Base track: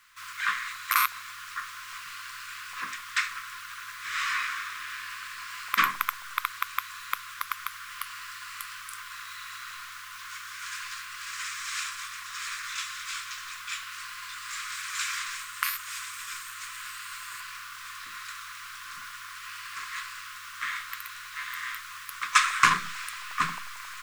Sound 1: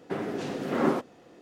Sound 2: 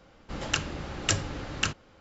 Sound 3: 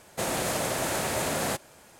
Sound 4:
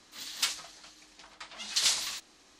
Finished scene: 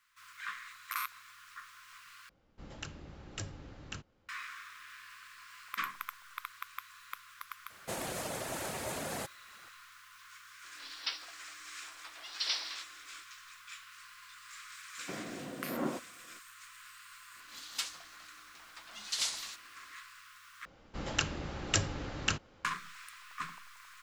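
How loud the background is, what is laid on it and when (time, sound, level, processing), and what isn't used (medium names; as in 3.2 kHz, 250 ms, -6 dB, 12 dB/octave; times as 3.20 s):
base track -13.5 dB
2.29 s: replace with 2 -17 dB + bass shelf 360 Hz +5.5 dB
7.70 s: add 3 -8.5 dB + reverb removal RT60 0.58 s
10.64 s: add 4 -6 dB + brick-wall FIR band-pass 250–5900 Hz
14.98 s: add 1 -9.5 dB + comb of notches 420 Hz
17.36 s: add 4 -7 dB
20.65 s: replace with 2 -3.5 dB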